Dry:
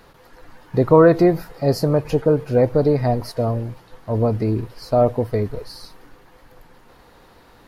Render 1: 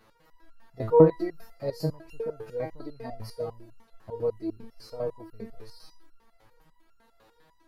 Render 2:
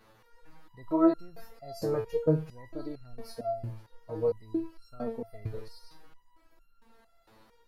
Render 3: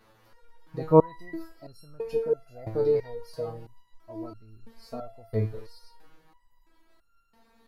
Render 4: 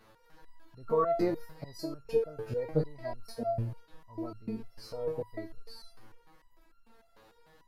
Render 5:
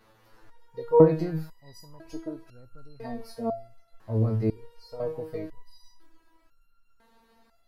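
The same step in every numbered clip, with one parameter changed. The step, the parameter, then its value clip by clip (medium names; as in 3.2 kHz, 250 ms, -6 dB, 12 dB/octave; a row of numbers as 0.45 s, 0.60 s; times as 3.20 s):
resonator arpeggio, rate: 10 Hz, 4.4 Hz, 3 Hz, 6.7 Hz, 2 Hz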